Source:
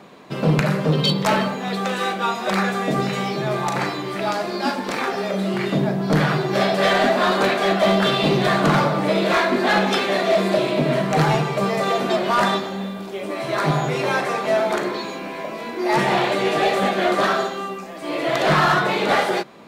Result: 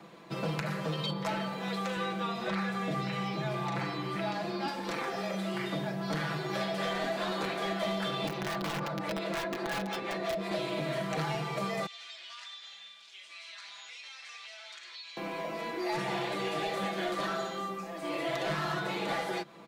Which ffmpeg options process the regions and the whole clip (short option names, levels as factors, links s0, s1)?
-filter_complex "[0:a]asettb=1/sr,asplit=3[s0][s1][s2];[s0]atrim=end=1.964[s3];[s1]atrim=start=1.96:end=4.68,asetpts=PTS-STARTPTS,afade=t=in:d=0.004:c=qsin,afade=t=out:st=2.716:d=0.004:c=qsin,equalizer=f=64:w=0.48:g=14,acrossover=split=4400[s4][s5];[s5]acompressor=threshold=0.00355:ratio=4:attack=1:release=60[s6];[s4][s6]amix=inputs=2:normalize=0,highpass=49[s7];[s2]atrim=start=4.676[s8];[s3][s7]acrossfade=d=0.004:c1=hsin:c2=qsin[s9];[s9][s8]acrossfade=d=0.004:c1=qsin:c2=hsin,asettb=1/sr,asplit=3[s10][s11][s12];[s10]atrim=end=8.274[s13];[s11]atrim=start=8.27:end=10.51,asetpts=PTS-STARTPTS,afade=t=in:d=0.004:c=qsin,afade=t=out:st=2.236:d=0.004:c=qsin,equalizer=f=3400:t=o:w=0.39:g=-3,acrossover=split=530[s14][s15];[s14]aeval=exprs='val(0)*(1-0.7/2+0.7/2*cos(2*PI*5.7*n/s))':c=same[s16];[s15]aeval=exprs='val(0)*(1-0.7/2-0.7/2*cos(2*PI*5.7*n/s))':c=same[s17];[s16][s17]amix=inputs=2:normalize=0,aeval=exprs='(mod(4.73*val(0)+1,2)-1)/4.73':c=same[s18];[s12]atrim=start=10.506[s19];[s13][s18]acrossfade=d=0.004:c1=hsin:c2=qsin[s20];[s20][s19]acrossfade=d=0.004:c1=qsin:c2=hsin,asettb=1/sr,asplit=3[s21][s22][s23];[s21]atrim=end=11.864[s24];[s22]atrim=start=11.86:end=15.17,asetpts=PTS-STARTPTS,afade=t=in:d=0.004:c=qsin,afade=t=out:st=3.306:d=0.004:c=qsin,asuperpass=centerf=4200:order=4:qfactor=0.92,acompressor=threshold=0.0158:ratio=6:attack=3.2:release=140:knee=1:detection=peak[s25];[s23]atrim=start=15.166[s26];[s24][s25]acrossfade=d=0.004:c1=hsin:c2=qsin[s27];[s27][s26]acrossfade=d=0.004:c1=qsin:c2=hsin,aecho=1:1:6:0.65,acrossover=split=130|650|1800|5000[s28][s29][s30][s31][s32];[s28]acompressor=threshold=0.00891:ratio=4[s33];[s29]acompressor=threshold=0.0398:ratio=4[s34];[s30]acompressor=threshold=0.0316:ratio=4[s35];[s31]acompressor=threshold=0.0224:ratio=4[s36];[s32]acompressor=threshold=0.00708:ratio=4[s37];[s33][s34][s35][s36][s37]amix=inputs=5:normalize=0,volume=0.376"